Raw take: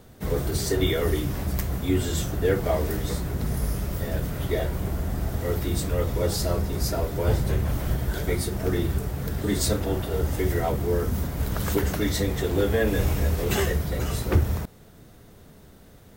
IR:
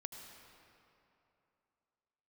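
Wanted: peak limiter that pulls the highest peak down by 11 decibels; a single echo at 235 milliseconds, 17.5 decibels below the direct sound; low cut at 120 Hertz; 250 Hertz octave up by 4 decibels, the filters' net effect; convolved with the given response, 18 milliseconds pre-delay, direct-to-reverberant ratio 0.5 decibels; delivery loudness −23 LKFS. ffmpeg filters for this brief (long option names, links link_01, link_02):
-filter_complex "[0:a]highpass=120,equalizer=frequency=250:width_type=o:gain=6,alimiter=limit=-19.5dB:level=0:latency=1,aecho=1:1:235:0.133,asplit=2[link_01][link_02];[1:a]atrim=start_sample=2205,adelay=18[link_03];[link_02][link_03]afir=irnorm=-1:irlink=0,volume=2.5dB[link_04];[link_01][link_04]amix=inputs=2:normalize=0,volume=3.5dB"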